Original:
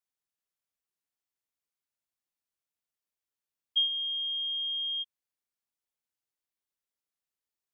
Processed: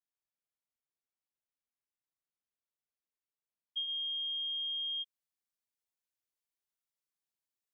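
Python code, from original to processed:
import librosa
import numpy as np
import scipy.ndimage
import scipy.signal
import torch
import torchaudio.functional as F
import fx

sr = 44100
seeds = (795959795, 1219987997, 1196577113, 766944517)

y = fx.high_shelf(x, sr, hz=3100.0, db=fx.steps((0.0, -9.5), (3.87, 3.0)))
y = y * librosa.db_to_amplitude(-5.5)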